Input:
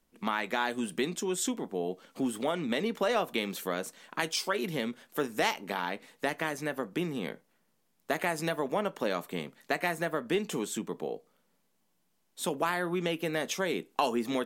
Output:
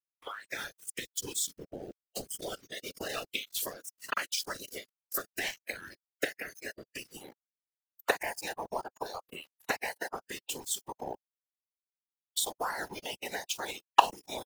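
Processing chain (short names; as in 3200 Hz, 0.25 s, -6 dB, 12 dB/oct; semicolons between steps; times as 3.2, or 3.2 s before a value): recorder AGC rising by 71 dB/s; HPF 610 Hz 12 dB/oct; sample gate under -29 dBFS; bell 830 Hz -10 dB 0.44 oct, from 7.17 s +3.5 dB; spectral noise reduction 20 dB; whisperiser; gain -3.5 dB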